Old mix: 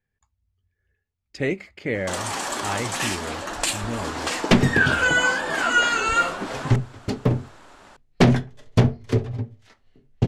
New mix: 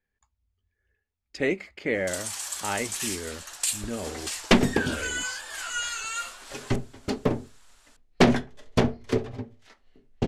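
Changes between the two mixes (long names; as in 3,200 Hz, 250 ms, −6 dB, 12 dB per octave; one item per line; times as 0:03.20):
first sound: add first difference
master: add parametric band 120 Hz −12 dB 0.89 octaves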